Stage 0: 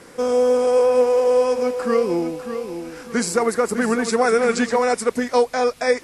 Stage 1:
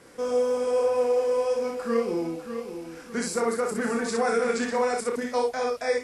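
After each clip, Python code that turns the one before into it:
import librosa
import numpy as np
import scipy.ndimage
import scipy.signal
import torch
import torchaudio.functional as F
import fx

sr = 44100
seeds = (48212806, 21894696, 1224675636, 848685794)

y = fx.room_early_taps(x, sr, ms=(30, 61), db=(-5.0, -4.0))
y = F.gain(torch.from_numpy(y), -9.0).numpy()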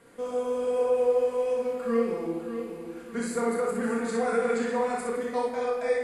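y = fx.peak_eq(x, sr, hz=5500.0, db=-13.5, octaves=0.33)
y = fx.room_shoebox(y, sr, seeds[0], volume_m3=1200.0, walls='mixed', distance_m=1.7)
y = F.gain(torch.from_numpy(y), -6.0).numpy()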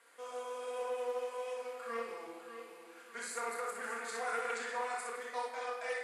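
y = scipy.signal.sosfilt(scipy.signal.butter(2, 940.0, 'highpass', fs=sr, output='sos'), x)
y = fx.doppler_dist(y, sr, depth_ms=0.12)
y = F.gain(torch.from_numpy(y), -3.0).numpy()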